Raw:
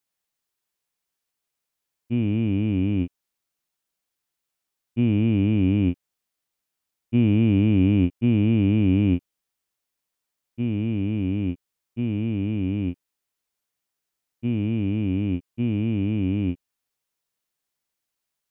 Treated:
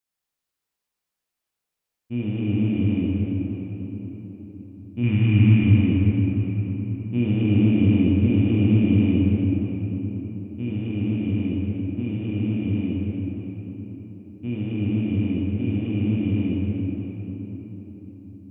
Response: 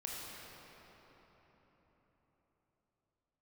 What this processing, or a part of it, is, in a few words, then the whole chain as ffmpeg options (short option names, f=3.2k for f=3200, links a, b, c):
cathedral: -filter_complex "[0:a]asettb=1/sr,asplit=3[a][b][c];[a]atrim=end=5.034[d];[b]atrim=start=5.03:end=5.64,asetpts=PTS-STARTPTS,afade=t=in:d=0.004:c=qsin,afade=t=out:st=0.606:d=0.004:c=qsin,equalizer=f=125:t=o:w=1:g=9,equalizer=f=500:t=o:w=1:g=-10,equalizer=f=1k:t=o:w=1:g=5,equalizer=f=2k:t=o:w=1:g=10[e];[c]atrim=start=5.636[f];[d][e]acrossfade=d=0.004:c1=hsin:c2=qsin[g];[g][f]acrossfade=d=0.004:c1=qsin:c2=hsin[h];[1:a]atrim=start_sample=2205[i];[h][i]afir=irnorm=-1:irlink=0"